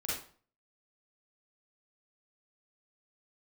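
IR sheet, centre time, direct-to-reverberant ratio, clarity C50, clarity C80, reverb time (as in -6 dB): 56 ms, -7.5 dB, -0.5 dB, 7.0 dB, 0.45 s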